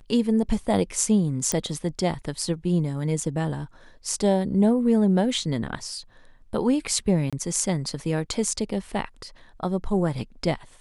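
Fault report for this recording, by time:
0:01.52: click −10 dBFS
0:07.30–0:07.33: drop-out 26 ms

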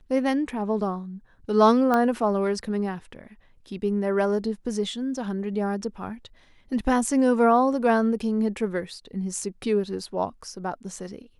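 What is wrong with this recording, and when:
0:01.94: click −12 dBFS

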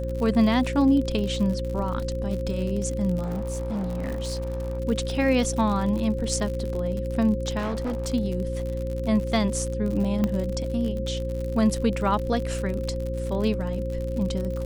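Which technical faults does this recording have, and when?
surface crackle 65 per second −30 dBFS
mains hum 60 Hz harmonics 6 −30 dBFS
whistle 530 Hz −31 dBFS
0:03.22–0:04.80: clipping −25 dBFS
0:07.58–0:08.14: clipping −24.5 dBFS
0:10.24: click −13 dBFS

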